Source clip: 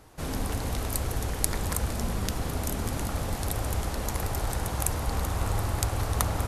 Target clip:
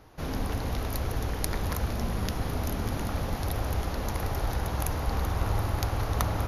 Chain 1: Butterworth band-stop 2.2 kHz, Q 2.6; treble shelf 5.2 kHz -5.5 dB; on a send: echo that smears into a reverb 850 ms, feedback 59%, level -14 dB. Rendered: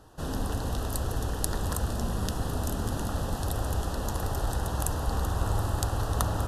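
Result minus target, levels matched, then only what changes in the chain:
8 kHz band +3.5 dB
change: Butterworth band-stop 8.2 kHz, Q 2.6

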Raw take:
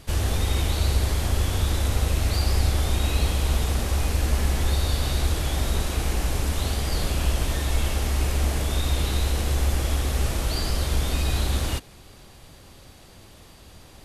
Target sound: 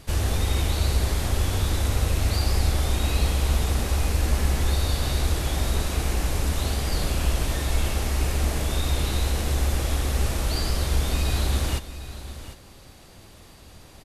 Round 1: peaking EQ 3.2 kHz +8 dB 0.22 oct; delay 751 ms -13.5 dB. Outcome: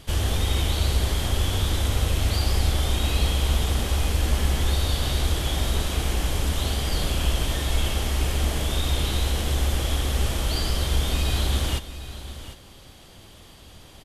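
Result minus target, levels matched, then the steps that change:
4 kHz band +3.5 dB
change: peaking EQ 3.2 kHz -2 dB 0.22 oct

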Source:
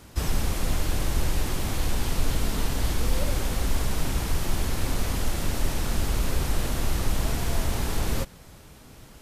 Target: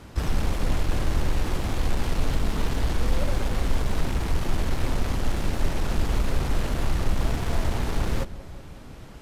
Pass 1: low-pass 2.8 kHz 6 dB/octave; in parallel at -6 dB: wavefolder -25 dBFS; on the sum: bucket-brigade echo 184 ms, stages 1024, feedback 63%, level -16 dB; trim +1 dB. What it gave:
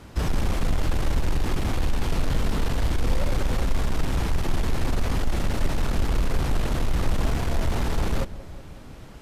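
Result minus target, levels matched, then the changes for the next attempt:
wavefolder: distortion -32 dB
change: wavefolder -32.5 dBFS

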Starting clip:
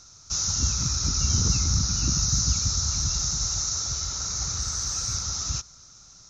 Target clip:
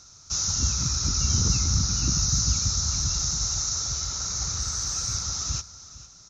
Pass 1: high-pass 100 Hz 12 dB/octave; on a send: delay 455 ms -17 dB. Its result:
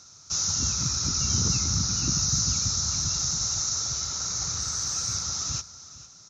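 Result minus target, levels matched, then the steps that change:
125 Hz band -3.0 dB
change: high-pass 27 Hz 12 dB/octave

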